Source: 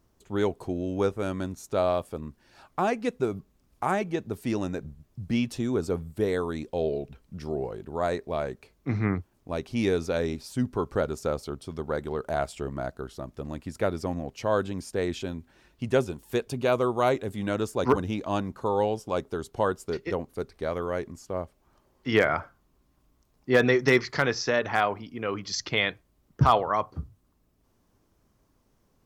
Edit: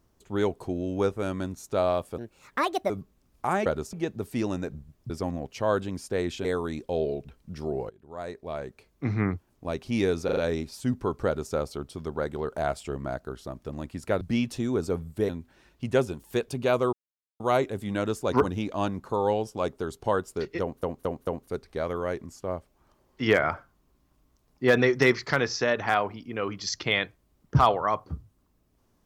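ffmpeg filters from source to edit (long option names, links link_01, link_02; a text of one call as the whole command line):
ffmpeg -i in.wav -filter_complex "[0:a]asplit=17[link_01][link_02][link_03][link_04][link_05][link_06][link_07][link_08][link_09][link_10][link_11][link_12][link_13][link_14][link_15][link_16][link_17];[link_01]atrim=end=2.184[link_18];[link_02]atrim=start=2.18:end=3.28,asetpts=PTS-STARTPTS,asetrate=67473,aresample=44100[link_19];[link_03]atrim=start=3.276:end=4.042[link_20];[link_04]atrim=start=10.978:end=11.252[link_21];[link_05]atrim=start=4.038:end=5.212[link_22];[link_06]atrim=start=13.928:end=15.282[link_23];[link_07]atrim=start=6.288:end=7.74,asetpts=PTS-STARTPTS,afade=type=out:start_time=1.448:duration=0.004:curve=hsin:silence=0.0944061[link_24];[link_08]atrim=start=7.74:end=10.132,asetpts=PTS-STARTPTS,afade=type=in:duration=1.21:silence=0.0944061[link_25];[link_09]atrim=start=10.088:end=10.132[link_26];[link_10]atrim=start=10.088:end=10.132[link_27];[link_11]atrim=start=10.088:end=13.932[link_28];[link_12]atrim=start=5.208:end=6.292[link_29];[link_13]atrim=start=15.278:end=16.92,asetpts=PTS-STARTPTS,afade=type=out:start_time=1.638:duration=0.004:curve=hsin,apad=pad_dur=0.47[link_30];[link_14]atrim=start=16.92:end=20.352,asetpts=PTS-STARTPTS,afade=type=in:duration=0.004:curve=hsin[link_31];[link_15]atrim=start=20.128:end=20.352[link_32];[link_16]atrim=start=20.128:end=20.352[link_33];[link_17]atrim=start=20.128[link_34];[link_18][link_19]acrossfade=duration=0.004:curve1=hsin:curve2=hsin[link_35];[link_35][link_20]acrossfade=duration=0.004:curve1=hsin:curve2=hsin[link_36];[link_36][link_21]acrossfade=duration=0.004:curve1=hsin:curve2=hsin[link_37];[link_37][link_22]acrossfade=duration=0.004:curve1=hsin:curve2=hsin[link_38];[link_38][link_23]acrossfade=duration=0.004:curve1=hsin:curve2=hsin[link_39];[link_24][link_25]concat=n=2:v=0:a=1[link_40];[link_39][link_40]acrossfade=duration=0.004:curve1=hsin:curve2=hsin[link_41];[link_41][link_26]acrossfade=duration=0.004:curve1=hsin:curve2=hsin[link_42];[link_42][link_27]acrossfade=duration=0.004:curve1=hsin:curve2=hsin[link_43];[link_43][link_28]acrossfade=duration=0.004:curve1=hsin:curve2=hsin[link_44];[link_44][link_29]acrossfade=duration=0.004:curve1=hsin:curve2=hsin[link_45];[link_30][link_31]concat=n=2:v=0:a=1[link_46];[link_45][link_46]acrossfade=duration=0.004:curve1=hsin:curve2=hsin[link_47];[link_47][link_32]acrossfade=duration=0.004:curve1=hsin:curve2=hsin[link_48];[link_48][link_33]acrossfade=duration=0.004:curve1=hsin:curve2=hsin[link_49];[link_49][link_34]acrossfade=duration=0.004:curve1=hsin:curve2=hsin" out.wav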